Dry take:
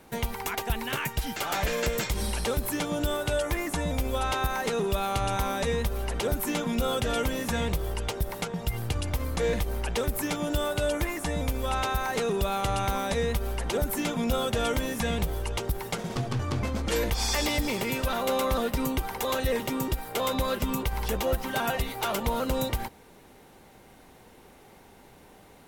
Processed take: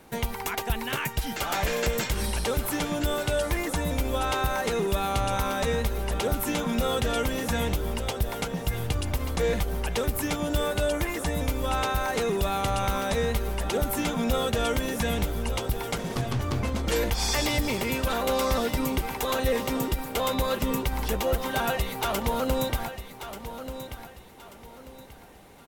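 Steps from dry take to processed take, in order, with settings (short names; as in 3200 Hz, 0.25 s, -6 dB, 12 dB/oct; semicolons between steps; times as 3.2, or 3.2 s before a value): feedback echo 1.186 s, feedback 32%, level -11 dB; gain +1 dB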